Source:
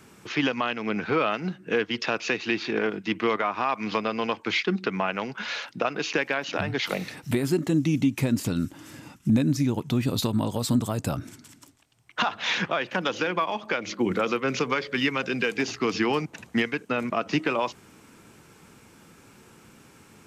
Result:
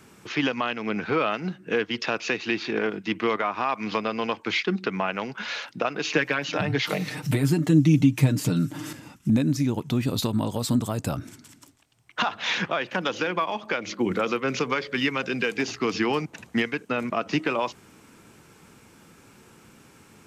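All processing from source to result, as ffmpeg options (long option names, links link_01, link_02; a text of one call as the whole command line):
ffmpeg -i in.wav -filter_complex "[0:a]asettb=1/sr,asplit=3[link_01][link_02][link_03];[link_01]atrim=end=6.054[link_04];[link_02]atrim=start=6.05:end=8.93,asetpts=PTS-STARTPTS,afade=type=in:duration=0.004:curve=qsin,afade=type=out:start_time=2.876:duration=0.004:curve=qsin,aecho=1:1:6.6:0.61,atrim=end_sample=127008,acompressor=mode=upward:threshold=-26dB:ratio=2.5:attack=3.2:release=140:knee=2.83:detection=peak,lowshelf=frequency=100:width_type=q:width=3:gain=-6[link_05];[link_03]atrim=start=8.926[link_06];[link_04][link_05]acrossfade=duration=0.004:curve1=hsin:curve2=qsin[link_07];[link_07][link_06]acrossfade=duration=0.004:curve1=qsin:curve2=hsin" out.wav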